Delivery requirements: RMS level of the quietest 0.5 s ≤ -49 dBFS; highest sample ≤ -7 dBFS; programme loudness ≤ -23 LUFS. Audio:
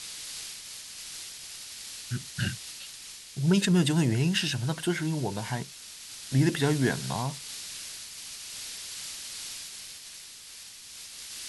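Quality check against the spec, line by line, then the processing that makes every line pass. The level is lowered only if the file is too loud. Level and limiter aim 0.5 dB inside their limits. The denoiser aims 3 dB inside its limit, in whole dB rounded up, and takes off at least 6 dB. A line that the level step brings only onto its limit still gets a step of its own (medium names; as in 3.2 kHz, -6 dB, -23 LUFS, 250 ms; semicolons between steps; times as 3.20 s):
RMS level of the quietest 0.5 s -46 dBFS: fail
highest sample -12.0 dBFS: pass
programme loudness -30.5 LUFS: pass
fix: noise reduction 6 dB, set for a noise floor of -46 dBFS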